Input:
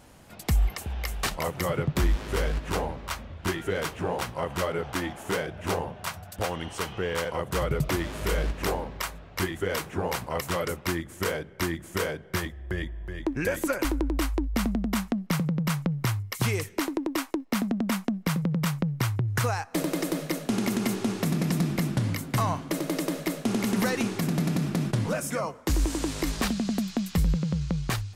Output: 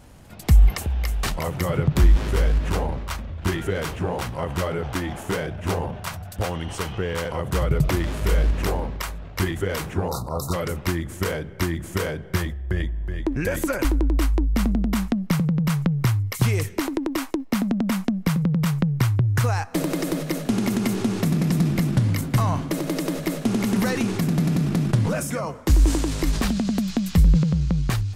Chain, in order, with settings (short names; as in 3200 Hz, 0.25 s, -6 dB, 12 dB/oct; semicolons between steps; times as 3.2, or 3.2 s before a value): low shelf 170 Hz +9.5 dB; spectral delete 10.08–10.54, 1400–3600 Hz; transient shaper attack +2 dB, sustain +6 dB